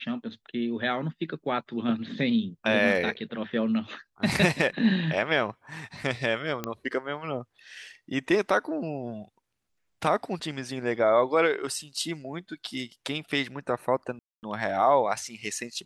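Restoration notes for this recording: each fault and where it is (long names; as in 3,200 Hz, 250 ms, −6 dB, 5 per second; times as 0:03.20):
0:06.64: click −15 dBFS
0:14.19–0:14.43: drop-out 239 ms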